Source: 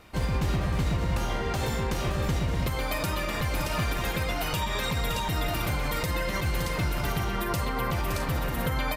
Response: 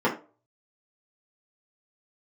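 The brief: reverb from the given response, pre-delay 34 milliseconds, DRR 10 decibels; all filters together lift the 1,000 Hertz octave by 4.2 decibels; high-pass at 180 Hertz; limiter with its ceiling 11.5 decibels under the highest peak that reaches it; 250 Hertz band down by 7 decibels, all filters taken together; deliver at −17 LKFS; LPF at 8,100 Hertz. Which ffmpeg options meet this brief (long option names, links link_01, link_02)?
-filter_complex "[0:a]highpass=180,lowpass=8100,equalizer=frequency=250:width_type=o:gain=-8,equalizer=frequency=1000:width_type=o:gain=5.5,alimiter=level_in=4dB:limit=-24dB:level=0:latency=1,volume=-4dB,asplit=2[link_01][link_02];[1:a]atrim=start_sample=2205,adelay=34[link_03];[link_02][link_03]afir=irnorm=-1:irlink=0,volume=-25.5dB[link_04];[link_01][link_04]amix=inputs=2:normalize=0,volume=18.5dB"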